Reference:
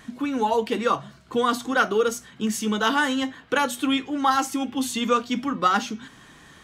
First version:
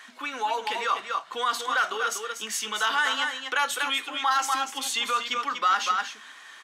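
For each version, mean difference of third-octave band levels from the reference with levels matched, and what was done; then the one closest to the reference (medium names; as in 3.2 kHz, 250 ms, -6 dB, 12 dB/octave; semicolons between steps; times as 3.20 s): 9.5 dB: delay 241 ms -8 dB; peak limiter -16.5 dBFS, peak gain reduction 8.5 dB; high-pass 1.1 kHz 12 dB/octave; treble shelf 6.5 kHz -8 dB; trim +5.5 dB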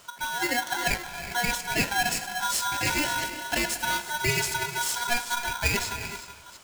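14.0 dB: chunks repeated in reverse 365 ms, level -14 dB; resonant high shelf 4.3 kHz +6 dB, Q 3; gated-style reverb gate 410 ms rising, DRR 9.5 dB; polarity switched at an audio rate 1.2 kHz; trim -5 dB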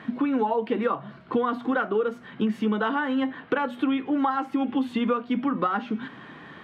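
7.0 dB: high-pass 160 Hz 12 dB/octave; dynamic bell 5.1 kHz, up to -6 dB, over -40 dBFS, Q 0.73; compression, threshold -29 dBFS, peak gain reduction 13 dB; distance through air 420 m; trim +8.5 dB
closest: third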